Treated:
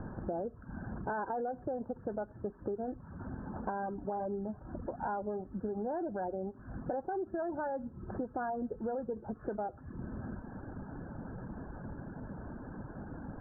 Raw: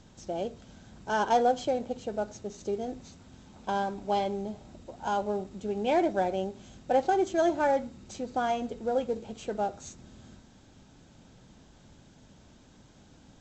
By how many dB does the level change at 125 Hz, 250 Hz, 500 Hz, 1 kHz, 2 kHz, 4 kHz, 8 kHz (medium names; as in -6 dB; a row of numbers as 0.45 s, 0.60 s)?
+2.0 dB, -4.5 dB, -8.0 dB, -9.5 dB, -9.0 dB, under -40 dB, under -30 dB